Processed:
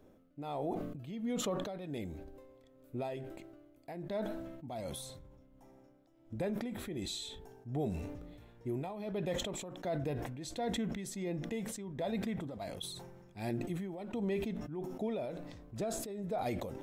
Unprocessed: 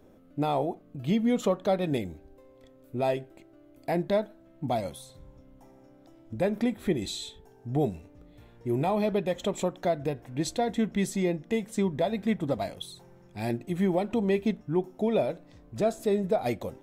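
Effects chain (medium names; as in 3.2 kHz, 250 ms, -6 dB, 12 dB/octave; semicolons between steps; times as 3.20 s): peak limiter -22 dBFS, peak gain reduction 7.5 dB; tremolo 1.4 Hz, depth 69%; decay stretcher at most 38 dB/s; trim -5 dB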